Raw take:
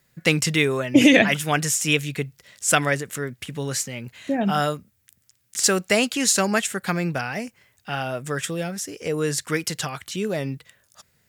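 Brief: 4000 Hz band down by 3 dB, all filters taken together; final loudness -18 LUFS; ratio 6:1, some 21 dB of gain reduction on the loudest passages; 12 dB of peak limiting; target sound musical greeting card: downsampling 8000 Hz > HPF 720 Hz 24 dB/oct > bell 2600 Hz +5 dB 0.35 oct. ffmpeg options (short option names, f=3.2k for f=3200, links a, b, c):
-af "equalizer=f=4k:t=o:g=-7,acompressor=threshold=-34dB:ratio=6,alimiter=level_in=6dB:limit=-24dB:level=0:latency=1,volume=-6dB,aresample=8000,aresample=44100,highpass=f=720:w=0.5412,highpass=f=720:w=1.3066,equalizer=f=2.6k:t=o:w=0.35:g=5,volume=27dB"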